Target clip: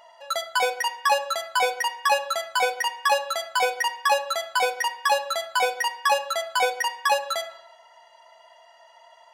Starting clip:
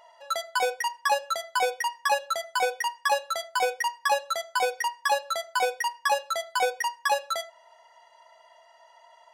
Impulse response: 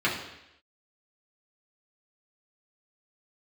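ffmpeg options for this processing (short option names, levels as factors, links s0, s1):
-filter_complex "[0:a]asplit=2[s0][s1];[1:a]atrim=start_sample=2205,highshelf=f=10000:g=8.5[s2];[s1][s2]afir=irnorm=-1:irlink=0,volume=0.119[s3];[s0][s3]amix=inputs=2:normalize=0,volume=1.26"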